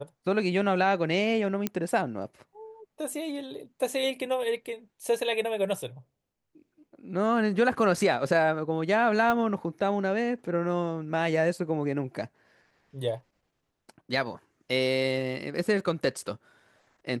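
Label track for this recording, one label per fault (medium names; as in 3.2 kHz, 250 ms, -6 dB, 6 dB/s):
1.670000	1.670000	pop -13 dBFS
9.300000	9.300000	pop -14 dBFS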